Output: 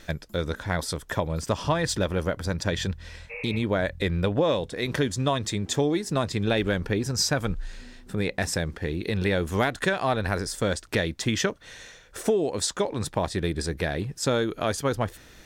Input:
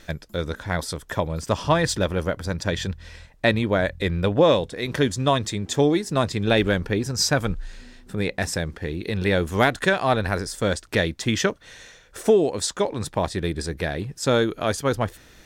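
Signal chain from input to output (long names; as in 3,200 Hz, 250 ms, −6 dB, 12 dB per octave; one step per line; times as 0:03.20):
downward compressor 2.5 to 1, threshold −22 dBFS, peak gain reduction 7 dB
healed spectral selection 0:03.33–0:03.56, 460–2,800 Hz after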